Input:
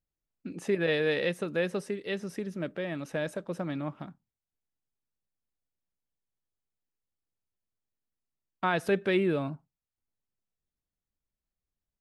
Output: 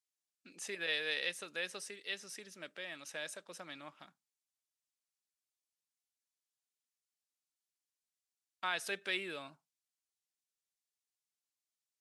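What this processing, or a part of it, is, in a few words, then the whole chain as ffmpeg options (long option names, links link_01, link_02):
piezo pickup straight into a mixer: -af "lowpass=7900,aderivative,volume=7dB"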